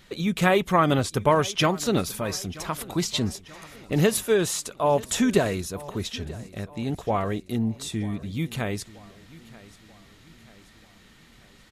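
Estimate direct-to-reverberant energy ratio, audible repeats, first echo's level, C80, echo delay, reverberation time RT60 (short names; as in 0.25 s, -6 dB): none, 3, -20.0 dB, none, 0.935 s, none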